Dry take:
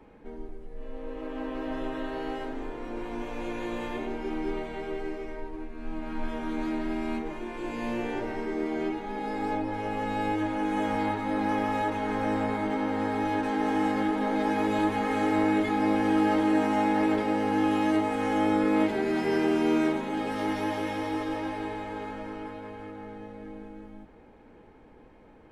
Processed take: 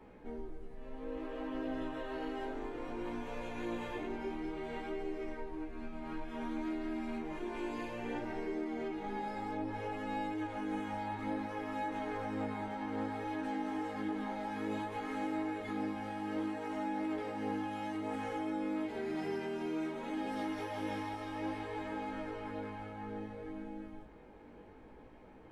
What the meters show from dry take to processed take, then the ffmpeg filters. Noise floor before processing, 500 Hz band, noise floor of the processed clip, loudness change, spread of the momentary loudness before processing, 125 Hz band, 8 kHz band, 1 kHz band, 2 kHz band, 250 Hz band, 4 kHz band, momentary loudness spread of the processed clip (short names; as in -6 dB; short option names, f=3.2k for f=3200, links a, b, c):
-53 dBFS, -10.0 dB, -55 dBFS, -11.0 dB, 16 LU, -9.0 dB, n/a, -10.5 dB, -10.0 dB, -10.5 dB, -10.0 dB, 8 LU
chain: -af "acompressor=threshold=-34dB:ratio=6,flanger=delay=15.5:depth=4.9:speed=0.59,volume=1dB"